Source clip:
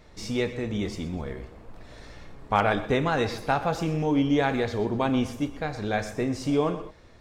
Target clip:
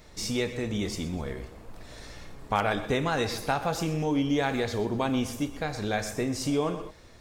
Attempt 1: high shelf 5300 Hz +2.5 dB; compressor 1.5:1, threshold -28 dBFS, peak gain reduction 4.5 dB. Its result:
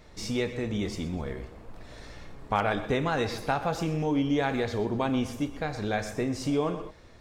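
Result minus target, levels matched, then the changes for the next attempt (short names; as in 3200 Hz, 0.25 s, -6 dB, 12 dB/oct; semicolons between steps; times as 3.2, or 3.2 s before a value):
8000 Hz band -5.5 dB
change: high shelf 5300 Hz +12 dB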